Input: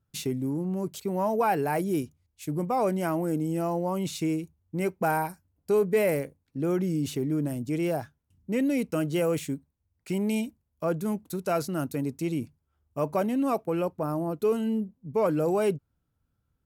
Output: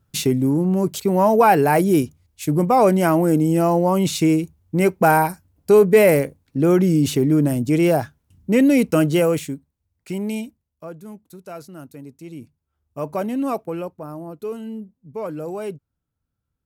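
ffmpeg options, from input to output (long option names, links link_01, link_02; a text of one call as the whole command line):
ffmpeg -i in.wav -af "volume=23dB,afade=type=out:start_time=9.02:duration=0.53:silence=0.354813,afade=type=out:start_time=10.28:duration=0.63:silence=0.298538,afade=type=in:start_time=12.24:duration=1.21:silence=0.251189,afade=type=out:start_time=13.45:duration=0.55:silence=0.421697" out.wav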